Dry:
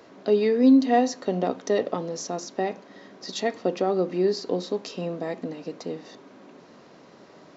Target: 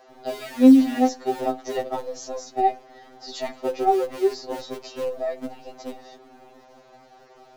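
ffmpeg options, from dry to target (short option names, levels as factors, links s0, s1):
-filter_complex "[0:a]equalizer=f=740:w=6:g=14,acrossover=split=290|540|3300[s0][s1][s2][s3];[s0]acrusher=bits=6:dc=4:mix=0:aa=0.000001[s4];[s4][s1][s2][s3]amix=inputs=4:normalize=0,afftfilt=real='re*2.45*eq(mod(b,6),0)':imag='im*2.45*eq(mod(b,6),0)':win_size=2048:overlap=0.75"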